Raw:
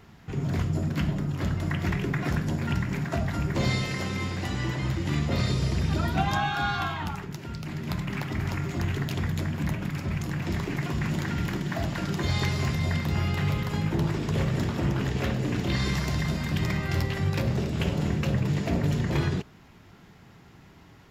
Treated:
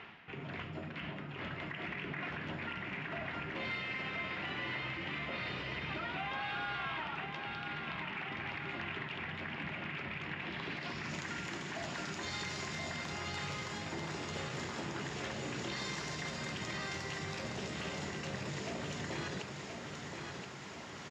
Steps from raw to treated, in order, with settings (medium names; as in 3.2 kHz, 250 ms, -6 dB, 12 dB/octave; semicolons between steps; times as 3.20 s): reverse; upward compressor, threshold -28 dBFS; reverse; low-pass sweep 2.7 kHz -> 7 kHz, 10.38–11.26 s; in parallel at -11.5 dB: saturation -27 dBFS, distortion -11 dB; on the sum: high-pass 740 Hz 6 dB/octave; treble shelf 5.1 kHz -8 dB; peak limiter -26 dBFS, peak gain reduction 10.5 dB; feedback delay 1026 ms, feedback 53%, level -5.5 dB; trim -5.5 dB